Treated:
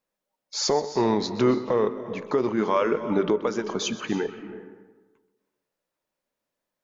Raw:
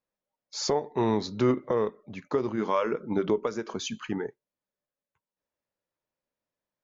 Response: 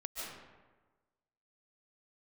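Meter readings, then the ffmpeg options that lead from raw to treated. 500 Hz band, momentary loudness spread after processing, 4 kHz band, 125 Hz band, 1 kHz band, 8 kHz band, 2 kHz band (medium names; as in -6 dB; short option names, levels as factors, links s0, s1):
+4.0 dB, 11 LU, +5.5 dB, +1.0 dB, +4.0 dB, no reading, +5.0 dB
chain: -filter_complex "[0:a]alimiter=limit=0.133:level=0:latency=1:release=39,equalizer=f=84:w=1.5:g=-9.5,asplit=2[s0][s1];[1:a]atrim=start_sample=2205,adelay=129[s2];[s1][s2]afir=irnorm=-1:irlink=0,volume=0.266[s3];[s0][s3]amix=inputs=2:normalize=0,volume=1.88"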